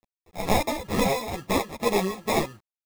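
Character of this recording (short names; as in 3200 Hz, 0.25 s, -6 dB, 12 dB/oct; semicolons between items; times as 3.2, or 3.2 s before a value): aliases and images of a low sample rate 1500 Hz, jitter 0%; tremolo triangle 2.2 Hz, depth 85%; a quantiser's noise floor 10-bit, dither none; a shimmering, thickened sound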